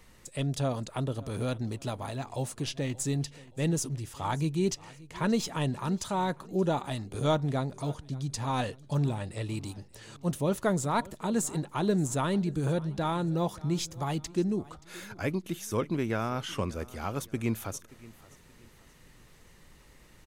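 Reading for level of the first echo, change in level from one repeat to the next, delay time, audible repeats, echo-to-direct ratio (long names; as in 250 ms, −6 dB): −21.0 dB, −8.5 dB, 577 ms, 2, −20.5 dB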